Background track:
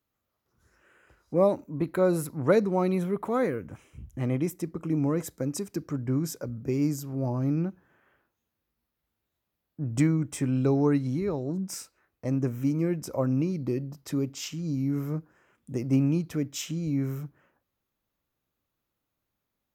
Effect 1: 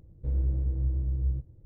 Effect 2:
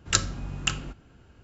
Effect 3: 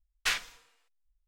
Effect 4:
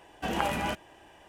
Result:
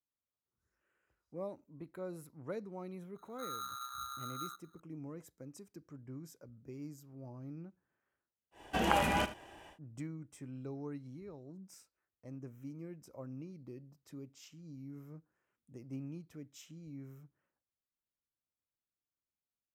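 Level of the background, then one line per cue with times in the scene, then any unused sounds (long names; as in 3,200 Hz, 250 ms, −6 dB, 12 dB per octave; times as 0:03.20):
background track −20 dB
0:03.15: mix in 1 −17.5 dB + ring modulator with a square carrier 1,300 Hz
0:08.51: mix in 4 −0.5 dB, fades 0.10 s + single-tap delay 77 ms −13.5 dB
not used: 2, 3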